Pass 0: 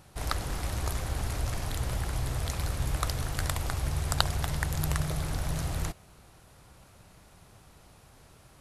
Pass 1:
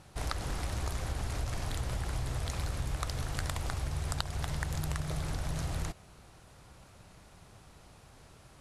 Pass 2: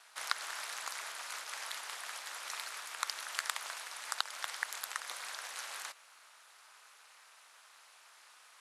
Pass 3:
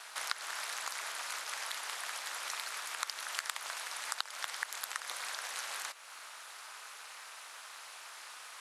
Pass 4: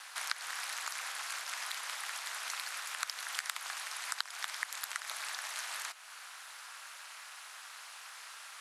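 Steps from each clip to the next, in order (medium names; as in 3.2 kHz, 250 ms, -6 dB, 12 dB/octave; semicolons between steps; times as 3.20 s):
low-pass 10 kHz 12 dB/octave; compression 6:1, threshold -30 dBFS, peak gain reduction 12 dB
ladder high-pass 910 Hz, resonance 20%; ring modulator 120 Hz; trim +10 dB
compression 2:1, threshold -54 dBFS, peak gain reduction 15 dB; trim +11 dB
frequency shift +120 Hz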